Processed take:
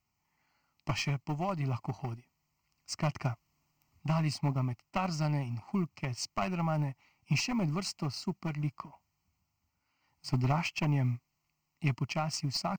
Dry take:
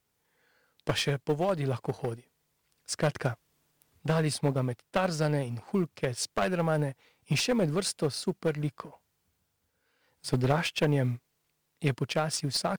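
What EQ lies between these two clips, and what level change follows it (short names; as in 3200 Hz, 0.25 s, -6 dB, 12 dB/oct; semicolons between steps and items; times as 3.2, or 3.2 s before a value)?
high shelf 5800 Hz -5 dB; fixed phaser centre 2400 Hz, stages 8; 0.0 dB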